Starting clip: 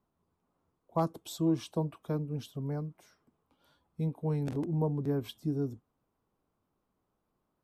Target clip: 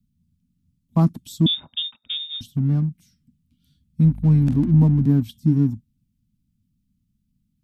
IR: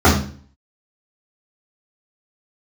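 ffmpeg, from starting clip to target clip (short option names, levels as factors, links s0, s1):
-filter_complex "[0:a]asettb=1/sr,asplit=3[s0][s1][s2];[s0]atrim=end=4.044[s3];[s1]atrim=start=4.04:end=5.04,asetpts=PTS-STARTPTS,afade=t=in:d=0.004:c=qsin,afade=t=out:st=0.996:d=0.004:c=qsin,aeval=exprs='val(0)+0.00398*(sin(2*PI*50*n/s)+sin(2*PI*2*50*n/s)/2+sin(2*PI*3*50*n/s)/3+sin(2*PI*4*50*n/s)/4+sin(2*PI*5*50*n/s)/5)':c=same[s4];[s2]atrim=start=5.036[s5];[s3][s4]acrossfade=d=0.004:c1=hsin:c2=qsin[s6];[s6][s5]acrossfade=d=0.004:c1=qsin:c2=hsin,acrossover=split=200|2500[s7][s8][s9];[s8]aeval=exprs='sgn(val(0))*max(abs(val(0))-0.00299,0)':c=same[s10];[s7][s10][s9]amix=inputs=3:normalize=0,asettb=1/sr,asplit=3[s11][s12][s13];[s11]atrim=end=1.464[s14];[s12]atrim=start=1.46:end=2.41,asetpts=PTS-STARTPTS,afade=t=in:d=0.004:c=qsin,afade=t=out:st=0.946:d=0.004:c=qsin,lowpass=f=3200:t=q:w=0.5098,lowpass=f=3200:t=q:w=0.6013,lowpass=f=3200:t=q:w=0.9,lowpass=f=3200:t=q:w=2.563,afreqshift=-3800[s15];[s13]atrim=start=2.406[s16];[s14][s15]acrossfade=d=0.004:c1=hsin:c2=qsin[s17];[s17][s16]acrossfade=d=0.004:c1=qsin:c2=hsin,lowshelf=f=320:t=q:w=3:g=10,volume=1.68"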